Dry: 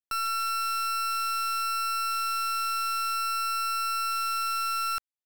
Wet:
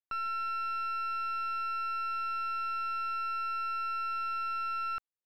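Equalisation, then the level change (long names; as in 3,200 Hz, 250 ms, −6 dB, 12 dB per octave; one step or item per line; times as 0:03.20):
high-frequency loss of the air 320 metres
−2.5 dB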